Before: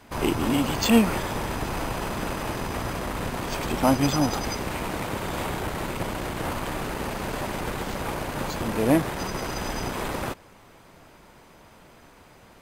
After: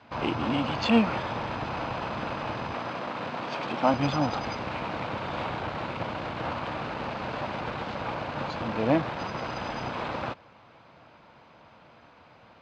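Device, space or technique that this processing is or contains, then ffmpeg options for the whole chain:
guitar cabinet: -filter_complex "[0:a]highpass=110,equalizer=f=180:t=q:w=4:g=-5,equalizer=f=270:t=q:w=4:g=-4,equalizer=f=390:t=q:w=4:g=-9,equalizer=f=1900:t=q:w=4:g=-5,equalizer=f=3300:t=q:w=4:g=-3,lowpass=f=4100:w=0.5412,lowpass=f=4100:w=1.3066,asettb=1/sr,asplit=3[s0][s1][s2];[s0]atrim=end=2.744[s3];[s1]atrim=start=2.74:end=3.94,asetpts=PTS-STARTPTS,afade=t=in:d=0.004:c=qsin,afade=t=out:st=1.196:d=0.004:c=qsin,highpass=170[s4];[s2]atrim=start=3.936[s5];[s3][s4]acrossfade=d=0.004:c1=hsin:c2=qsin[s6];[s6][s5]acrossfade=d=0.004:c1=qsin:c2=hsin"

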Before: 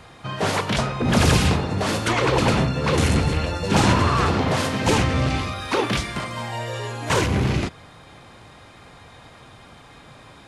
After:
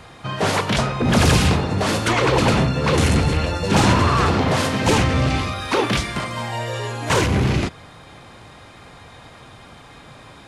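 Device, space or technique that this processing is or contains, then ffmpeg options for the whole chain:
parallel distortion: -filter_complex "[0:a]asplit=2[s0][s1];[s1]asoftclip=type=hard:threshold=0.133,volume=0.398[s2];[s0][s2]amix=inputs=2:normalize=0"

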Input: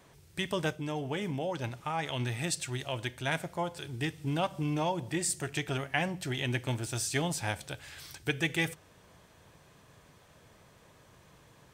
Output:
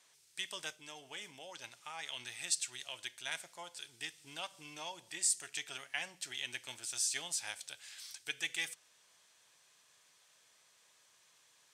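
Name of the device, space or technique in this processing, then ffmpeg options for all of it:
piezo pickup straight into a mixer: -af "lowpass=7600,aderivative,volume=1.58"

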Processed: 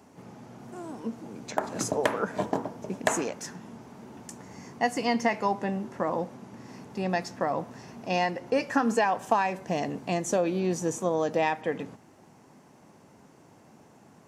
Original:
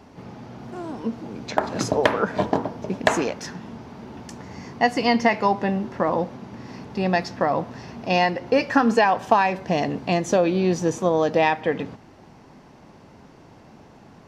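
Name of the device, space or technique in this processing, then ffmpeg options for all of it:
budget condenser microphone: -af "highpass=110,highshelf=f=6000:t=q:w=1.5:g=9,volume=0.473"

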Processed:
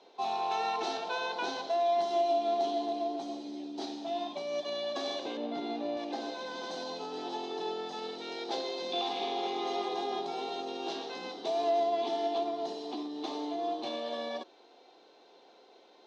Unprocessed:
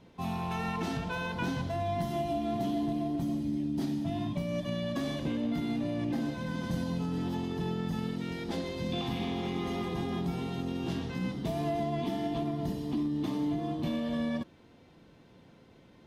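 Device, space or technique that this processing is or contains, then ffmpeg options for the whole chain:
phone speaker on a table: -filter_complex "[0:a]highpass=f=370:w=0.5412,highpass=f=370:w=1.3066,equalizer=f=400:t=q:w=4:g=5,equalizer=f=760:t=q:w=4:g=10,equalizer=f=1900:t=q:w=4:g=-5,equalizer=f=4000:t=q:w=4:g=10,equalizer=f=5900:t=q:w=4:g=4,lowpass=f=6800:w=0.5412,lowpass=f=6800:w=1.3066,asettb=1/sr,asplit=3[s0][s1][s2];[s0]atrim=end=5.374[s3];[s1]atrim=start=5.37:end=5.97,asetpts=PTS-STARTPTS,afade=t=in:d=0.004:c=qsin,afade=t=out:st=0.596:d=0.004:c=qsin,aemphasis=mode=reproduction:type=bsi[s4];[s2]atrim=start=5.966[s5];[s3][s4]acrossfade=d=0.004:c1=hsin:c2=qsin[s6];[s6][s5]acrossfade=d=0.004:c1=qsin:c2=hsin"

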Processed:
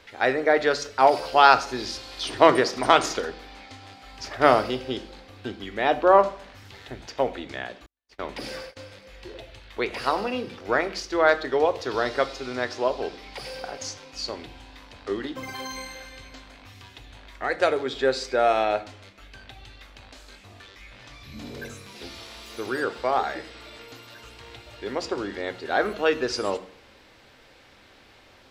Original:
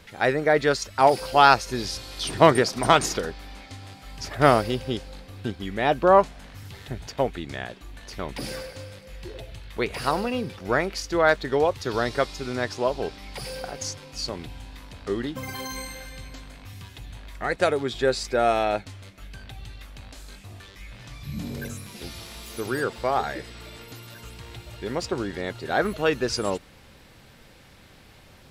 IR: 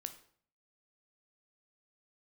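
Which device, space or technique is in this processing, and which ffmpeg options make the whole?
filtered reverb send: -filter_complex "[0:a]asplit=2[s0][s1];[s1]highpass=f=170:w=0.5412,highpass=f=170:w=1.3066,lowpass=6700[s2];[1:a]atrim=start_sample=2205[s3];[s2][s3]afir=irnorm=-1:irlink=0,volume=2.51[s4];[s0][s4]amix=inputs=2:normalize=0,asettb=1/sr,asplit=3[s5][s6][s7];[s5]atrim=end=7.864[s8];[s6]atrim=start=7.86:end=8.77,asetpts=PTS-STARTPTS,afade=t=in:d=0.004:c=qsin,afade=t=out:st=0.906:d=0.004:c=qsin,agate=range=0.00355:threshold=0.0282:ratio=16:detection=peak[s9];[s7]atrim=start=8.766[s10];[s8][s9]acrossfade=d=0.004:c1=hsin:c2=qsin[s11];[s11][s10]acrossfade=d=0.004:c1=qsin:c2=hsin,volume=0.398"

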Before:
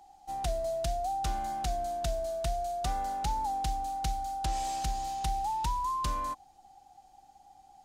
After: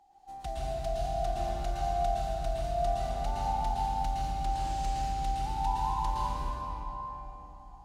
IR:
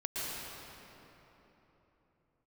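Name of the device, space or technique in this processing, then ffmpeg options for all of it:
swimming-pool hall: -filter_complex "[1:a]atrim=start_sample=2205[s0];[0:a][s0]afir=irnorm=-1:irlink=0,highshelf=f=4900:g=-7,volume=0.631"

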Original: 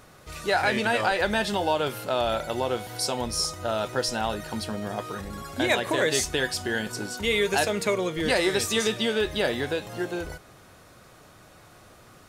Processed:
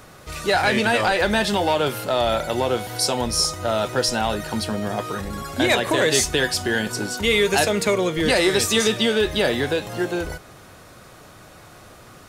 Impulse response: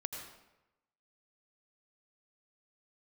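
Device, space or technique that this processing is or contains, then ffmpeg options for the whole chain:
one-band saturation: -filter_complex "[0:a]acrossover=split=310|2700[s0][s1][s2];[s1]asoftclip=type=tanh:threshold=0.0944[s3];[s0][s3][s2]amix=inputs=3:normalize=0,volume=2.11"

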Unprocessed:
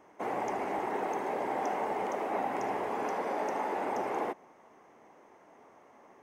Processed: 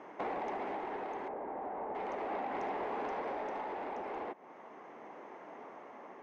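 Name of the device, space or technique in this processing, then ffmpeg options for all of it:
AM radio: -filter_complex "[0:a]highpass=180,lowpass=3400,acompressor=threshold=0.00794:ratio=5,asoftclip=type=tanh:threshold=0.0119,tremolo=f=0.37:d=0.33,asettb=1/sr,asplit=3[s0][s1][s2];[s0]atrim=end=1.284[s3];[s1]atrim=start=1.28:end=1.95,asetpts=PTS-STARTPTS,afade=t=in:d=0.004:c=qsin,afade=t=out:st=0.666:d=0.004:c=qsin,lowpass=1300[s4];[s2]atrim=start=1.946[s5];[s3][s4]acrossfade=d=0.004:c1=hsin:c2=qsin[s6];[s6][s5]acrossfade=d=0.004:c1=qsin:c2=hsin,volume=2.66"

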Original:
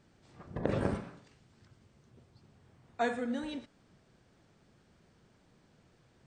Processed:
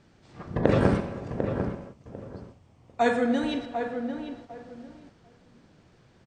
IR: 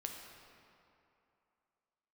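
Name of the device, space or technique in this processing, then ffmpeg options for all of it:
keyed gated reverb: -filter_complex "[0:a]lowpass=7300,asettb=1/sr,asplit=3[s0][s1][s2];[s0]atrim=end=1.004[s3];[s1]atrim=start=1:end=3.06,asetpts=PTS-STARTPTS,afade=t=in:d=0.004:c=qsin,afade=t=out:st=2.056:d=0.004:c=qsin,equalizer=f=160:t=o:w=0.67:g=-5,equalizer=f=400:t=o:w=0.67:g=-7,equalizer=f=1600:t=o:w=0.67:g=-10,equalizer=f=4000:t=o:w=0.67:g=-5[s4];[s2]atrim=start=3.056[s5];[s3][s4]acrossfade=d=0.004:c1=hsin:c2=qsin[s6];[s6][s5]acrossfade=d=0.004:c1=qsin:c2=hsin,asplit=2[s7][s8];[s8]adelay=747,lowpass=f=1600:p=1,volume=0.447,asplit=2[s9][s10];[s10]adelay=747,lowpass=f=1600:p=1,volume=0.22,asplit=2[s11][s12];[s12]adelay=747,lowpass=f=1600:p=1,volume=0.22[s13];[s7][s9][s11][s13]amix=inputs=4:normalize=0,asplit=3[s14][s15][s16];[1:a]atrim=start_sample=2205[s17];[s15][s17]afir=irnorm=-1:irlink=0[s18];[s16]apad=whole_len=374907[s19];[s18][s19]sidechaingate=range=0.0224:threshold=0.00126:ratio=16:detection=peak,volume=0.891[s20];[s14][s20]amix=inputs=2:normalize=0,volume=2"

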